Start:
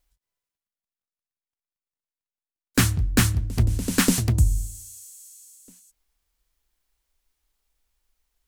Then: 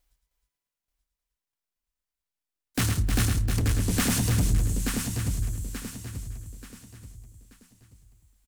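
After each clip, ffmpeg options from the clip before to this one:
-filter_complex "[0:a]asplit=2[a][b];[b]aecho=0:1:882|1764|2646|3528:0.355|0.117|0.0386|0.0128[c];[a][c]amix=inputs=2:normalize=0,asoftclip=type=tanh:threshold=-21dB,asplit=2[d][e];[e]aecho=0:1:109|311:0.501|0.447[f];[d][f]amix=inputs=2:normalize=0"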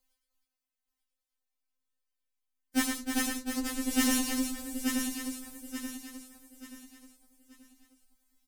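-af "afftfilt=real='re*3.46*eq(mod(b,12),0)':imag='im*3.46*eq(mod(b,12),0)':win_size=2048:overlap=0.75"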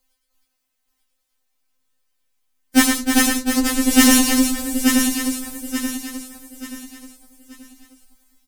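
-af "dynaudnorm=f=130:g=5:m=6.5dB,volume=8dB"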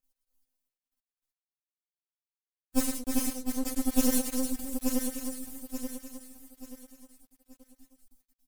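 -af "equalizer=f=1.9k:w=0.4:g=-15,aeval=exprs='max(val(0),0)':c=same,volume=-6dB"

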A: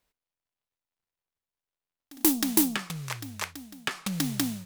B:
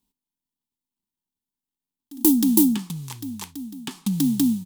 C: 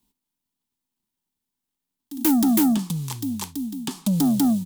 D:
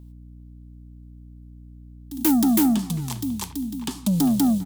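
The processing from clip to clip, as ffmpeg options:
-af "firequalizer=gain_entry='entry(120,0);entry(230,14);entry(570,-17);entry(890,1);entry(1300,-13);entry(2200,-11);entry(3200,-1);entry(5300,-2);entry(7900,2);entry(15000,4)':delay=0.05:min_phase=1"
-filter_complex "[0:a]acrossover=split=300|1400|3100[a][b][c][d];[c]acompressor=threshold=-53dB:ratio=6[e];[a][b][e][d]amix=inputs=4:normalize=0,asoftclip=type=tanh:threshold=-21dB,volume=5.5dB"
-filter_complex "[0:a]aeval=exprs='val(0)+0.00794*(sin(2*PI*60*n/s)+sin(2*PI*2*60*n/s)/2+sin(2*PI*3*60*n/s)/3+sin(2*PI*4*60*n/s)/4+sin(2*PI*5*60*n/s)/5)':c=same,asplit=2[a][b];[b]adelay=400,highpass=300,lowpass=3.4k,asoftclip=type=hard:threshold=-23.5dB,volume=-12dB[c];[a][c]amix=inputs=2:normalize=0"

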